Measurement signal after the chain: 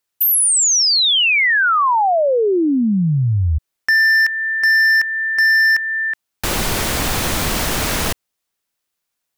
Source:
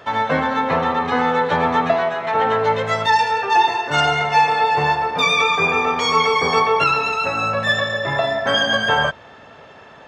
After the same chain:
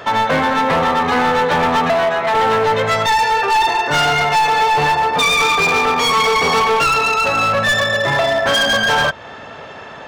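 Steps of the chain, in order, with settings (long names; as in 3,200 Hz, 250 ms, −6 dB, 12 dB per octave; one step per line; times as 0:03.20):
low-shelf EQ 500 Hz −2 dB
in parallel at +0.5 dB: downward compressor 8 to 1, threshold −26 dBFS
on the sum: gain into a clipping stage and back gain 15 dB
level +3.5 dB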